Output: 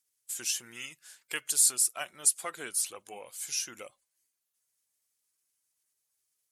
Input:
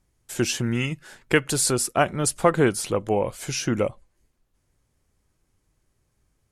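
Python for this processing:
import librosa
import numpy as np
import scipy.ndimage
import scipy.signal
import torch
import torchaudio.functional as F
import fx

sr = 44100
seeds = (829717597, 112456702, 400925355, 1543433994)

y = fx.spec_quant(x, sr, step_db=15)
y = np.diff(y, prepend=0.0)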